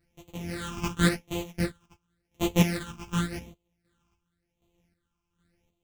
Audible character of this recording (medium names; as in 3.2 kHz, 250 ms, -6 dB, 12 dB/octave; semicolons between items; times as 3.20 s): a buzz of ramps at a fixed pitch in blocks of 256 samples; phasing stages 8, 0.91 Hz, lowest notch 540–1600 Hz; chopped level 1.3 Hz, depth 60%, duty 40%; a shimmering, thickened sound